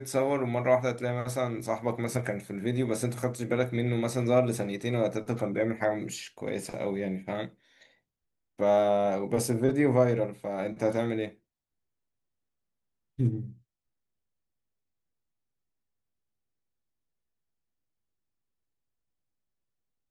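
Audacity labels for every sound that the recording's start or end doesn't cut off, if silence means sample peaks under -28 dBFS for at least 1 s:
8.600000	11.250000	sound
13.200000	13.410000	sound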